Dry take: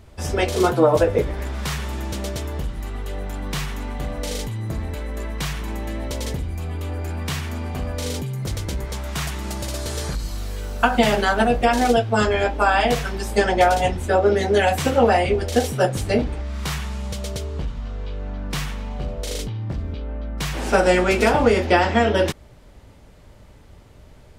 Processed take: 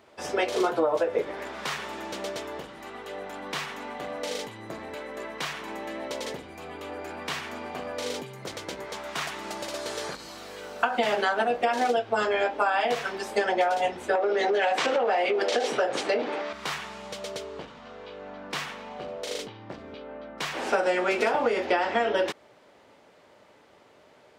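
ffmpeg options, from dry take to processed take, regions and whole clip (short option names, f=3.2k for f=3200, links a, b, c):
-filter_complex "[0:a]asettb=1/sr,asplit=3[a][b][c];[a]atrim=end=14.154[d];[b]atrim=start=14.15:end=16.53,asetpts=PTS-STARTPTS,afade=t=in:d=0.004:c=qsin,afade=t=out:st=2.376:d=0.004:c=qsin,acompressor=threshold=-21dB:ratio=10:attack=3.2:release=140:knee=1:detection=peak,highpass=280,lowpass=6.2k,aeval=exprs='0.237*sin(PI/2*1.78*val(0)/0.237)':c=same[e];[c]atrim=start=16.526[f];[d][e]acrossfade=d=0.004:c1=hsin:c2=qsin[g];[g][f]acrossfade=d=0.004:c1=qsin:c2=hsin,highpass=400,equalizer=f=13k:w=0.4:g=-12.5,acompressor=threshold=-21dB:ratio=5"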